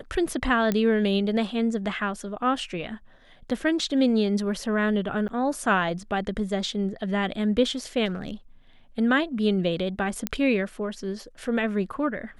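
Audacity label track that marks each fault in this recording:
0.720000	0.720000	pop -12 dBFS
5.280000	5.290000	dropout 9.4 ms
8.050000	8.300000	clipped -24 dBFS
10.270000	10.270000	pop -9 dBFS

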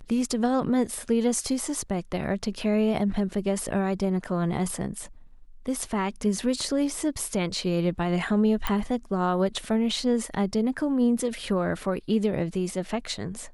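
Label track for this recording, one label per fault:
8.670000	8.670000	pop -12 dBFS

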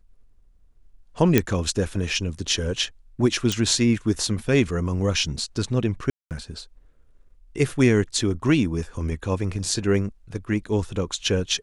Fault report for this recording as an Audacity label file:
1.380000	1.380000	pop -3 dBFS
3.520000	3.520000	pop
6.100000	6.310000	dropout 208 ms

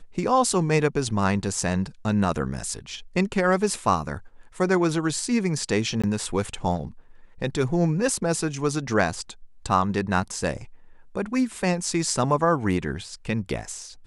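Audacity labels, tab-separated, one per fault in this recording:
6.020000	6.040000	dropout 16 ms

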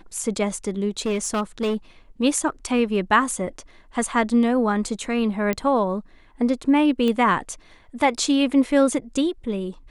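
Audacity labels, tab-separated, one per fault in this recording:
0.990000	1.750000	clipped -19 dBFS
5.530000	5.530000	pop -11 dBFS
7.080000	7.080000	pop -13 dBFS

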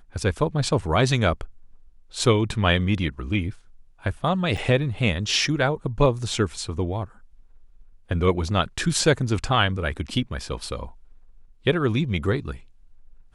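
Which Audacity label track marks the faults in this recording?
4.570000	4.580000	dropout 6.2 ms

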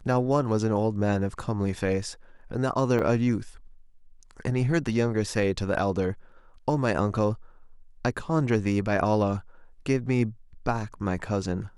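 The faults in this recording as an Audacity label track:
2.990000	2.990000	dropout 3.8 ms

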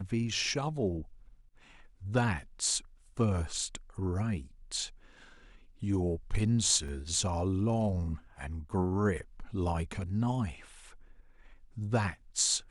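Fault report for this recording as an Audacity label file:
6.880000	6.880000	dropout 3.8 ms

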